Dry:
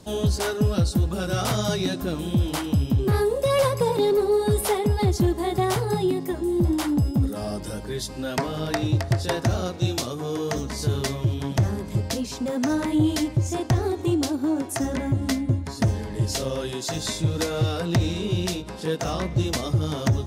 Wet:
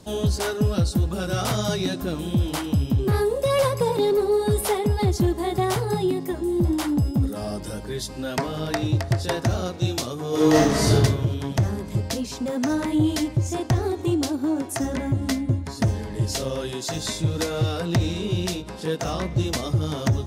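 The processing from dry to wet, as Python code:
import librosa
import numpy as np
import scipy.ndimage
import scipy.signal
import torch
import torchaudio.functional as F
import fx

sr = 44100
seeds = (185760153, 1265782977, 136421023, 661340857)

y = fx.reverb_throw(x, sr, start_s=10.29, length_s=0.64, rt60_s=1.1, drr_db=-9.5)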